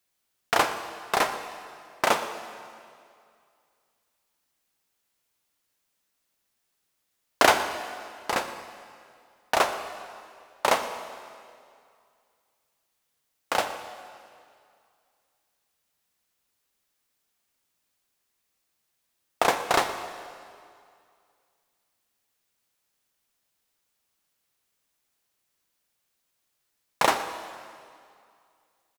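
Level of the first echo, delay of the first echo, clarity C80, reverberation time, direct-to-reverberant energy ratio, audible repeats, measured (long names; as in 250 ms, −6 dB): −17.5 dB, 119 ms, 9.5 dB, 2.3 s, 8.5 dB, 1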